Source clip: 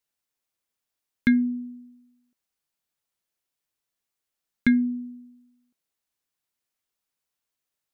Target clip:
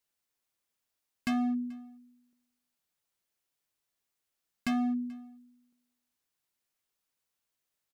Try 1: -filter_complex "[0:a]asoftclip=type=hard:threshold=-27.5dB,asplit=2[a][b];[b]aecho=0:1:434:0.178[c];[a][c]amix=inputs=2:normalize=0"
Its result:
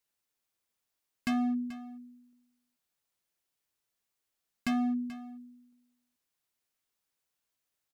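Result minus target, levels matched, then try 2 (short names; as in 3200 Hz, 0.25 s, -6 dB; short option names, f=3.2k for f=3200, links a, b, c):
echo-to-direct +9.5 dB
-filter_complex "[0:a]asoftclip=type=hard:threshold=-27.5dB,asplit=2[a][b];[b]aecho=0:1:434:0.0596[c];[a][c]amix=inputs=2:normalize=0"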